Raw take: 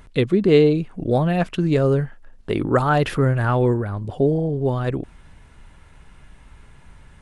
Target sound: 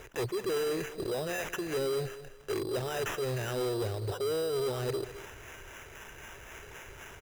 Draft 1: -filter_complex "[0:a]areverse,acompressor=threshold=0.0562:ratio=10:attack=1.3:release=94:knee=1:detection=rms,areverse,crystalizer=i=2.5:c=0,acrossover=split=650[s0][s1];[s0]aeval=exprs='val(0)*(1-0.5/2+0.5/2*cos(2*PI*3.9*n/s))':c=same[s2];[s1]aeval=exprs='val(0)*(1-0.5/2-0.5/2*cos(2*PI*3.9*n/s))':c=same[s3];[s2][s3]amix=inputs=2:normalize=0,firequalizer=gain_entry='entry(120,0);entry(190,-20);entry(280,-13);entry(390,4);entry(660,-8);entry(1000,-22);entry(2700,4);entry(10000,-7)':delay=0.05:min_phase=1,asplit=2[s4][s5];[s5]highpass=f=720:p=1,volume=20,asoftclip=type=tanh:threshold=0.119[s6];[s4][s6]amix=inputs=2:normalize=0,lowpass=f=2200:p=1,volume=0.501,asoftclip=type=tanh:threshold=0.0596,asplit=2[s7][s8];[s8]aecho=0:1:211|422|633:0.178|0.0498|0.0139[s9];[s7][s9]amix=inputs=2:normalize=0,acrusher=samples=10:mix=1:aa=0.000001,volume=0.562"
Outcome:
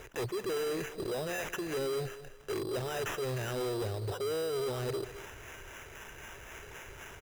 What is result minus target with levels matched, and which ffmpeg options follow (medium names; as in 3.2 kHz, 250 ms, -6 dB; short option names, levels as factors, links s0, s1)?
saturation: distortion +20 dB
-filter_complex "[0:a]areverse,acompressor=threshold=0.0562:ratio=10:attack=1.3:release=94:knee=1:detection=rms,areverse,crystalizer=i=2.5:c=0,acrossover=split=650[s0][s1];[s0]aeval=exprs='val(0)*(1-0.5/2+0.5/2*cos(2*PI*3.9*n/s))':c=same[s2];[s1]aeval=exprs='val(0)*(1-0.5/2-0.5/2*cos(2*PI*3.9*n/s))':c=same[s3];[s2][s3]amix=inputs=2:normalize=0,firequalizer=gain_entry='entry(120,0);entry(190,-20);entry(280,-13);entry(390,4);entry(660,-8);entry(1000,-22);entry(2700,4);entry(10000,-7)':delay=0.05:min_phase=1,asplit=2[s4][s5];[s5]highpass=f=720:p=1,volume=20,asoftclip=type=tanh:threshold=0.119[s6];[s4][s6]amix=inputs=2:normalize=0,lowpass=f=2200:p=1,volume=0.501,asoftclip=type=tanh:threshold=0.224,asplit=2[s7][s8];[s8]aecho=0:1:211|422|633:0.178|0.0498|0.0139[s9];[s7][s9]amix=inputs=2:normalize=0,acrusher=samples=10:mix=1:aa=0.000001,volume=0.562"